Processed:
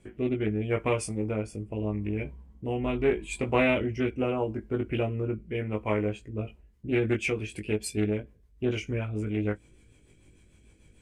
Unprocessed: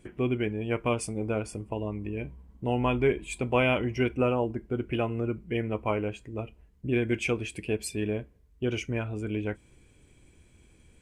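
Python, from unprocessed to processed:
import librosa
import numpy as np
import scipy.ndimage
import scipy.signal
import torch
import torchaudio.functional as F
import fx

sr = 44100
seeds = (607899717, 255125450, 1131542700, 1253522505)

y = fx.doubler(x, sr, ms=19.0, db=-3.5)
y = fx.rotary_switch(y, sr, hz=0.8, then_hz=6.7, switch_at_s=6.1)
y = fx.doppler_dist(y, sr, depth_ms=0.18)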